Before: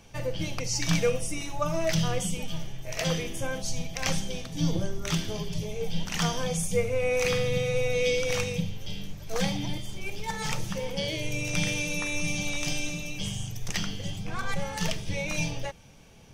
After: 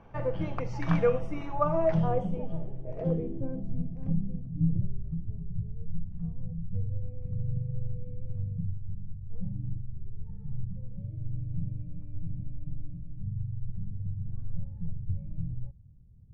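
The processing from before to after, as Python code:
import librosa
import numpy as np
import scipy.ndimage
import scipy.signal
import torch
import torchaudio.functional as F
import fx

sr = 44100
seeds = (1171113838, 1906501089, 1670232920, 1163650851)

y = fx.filter_sweep_lowpass(x, sr, from_hz=1200.0, to_hz=100.0, start_s=1.51, end_s=5.11, q=1.6)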